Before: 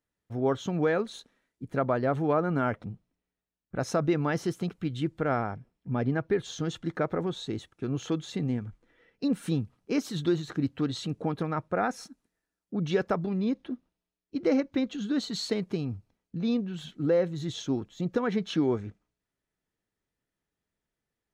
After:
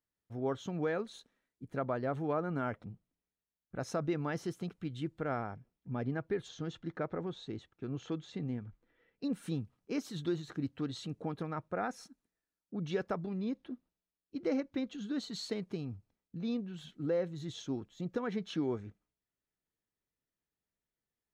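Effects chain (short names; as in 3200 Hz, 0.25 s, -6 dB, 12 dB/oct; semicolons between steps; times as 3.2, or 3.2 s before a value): 6.48–9.24 air absorption 88 m; gain -8 dB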